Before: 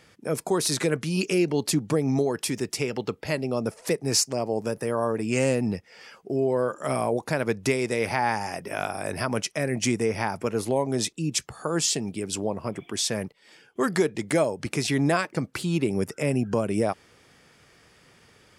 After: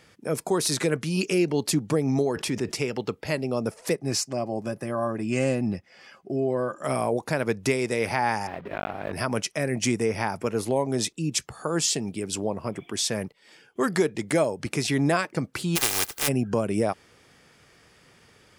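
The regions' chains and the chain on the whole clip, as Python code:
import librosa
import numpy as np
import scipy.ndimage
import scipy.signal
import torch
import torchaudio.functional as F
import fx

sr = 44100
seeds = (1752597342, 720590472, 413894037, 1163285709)

y = fx.chain(x, sr, fx.lowpass(hz=2900.0, slope=6),
    fx.env_flatten(amount_pct=50), at=(2.36, 2.76))
y = fx.chain(y, sr, fx.high_shelf(hz=5300.0, db=-6.5),
    fx.notch_comb(f0_hz=460.0), at=(3.94, 6.84))
y = fx.chain(y, sr, fx.block_float(bits=3),
    fx.air_absorb(metres=490.0),
    fx.notch(hz=7800.0, q=26.0), at=(8.47, 9.13))
y = fx.spec_flatten(y, sr, power=0.11, at=(15.75, 16.27), fade=0.02)
y = fx.comb(y, sr, ms=2.5, depth=0.37, at=(15.75, 16.27), fade=0.02)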